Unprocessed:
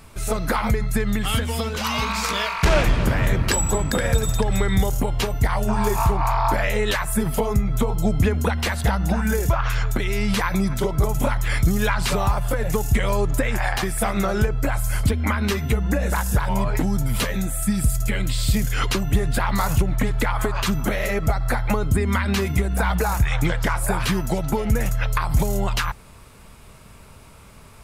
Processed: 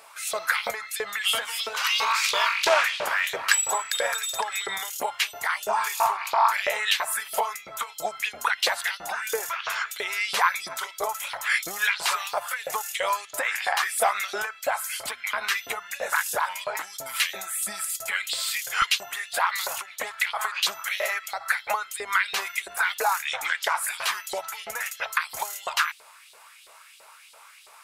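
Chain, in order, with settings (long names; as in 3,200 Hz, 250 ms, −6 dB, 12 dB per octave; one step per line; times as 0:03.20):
auto-filter high-pass saw up 3 Hz 480–4,100 Hz
parametric band 210 Hz −9 dB 2.7 octaves, from 0:18.82 −15 dB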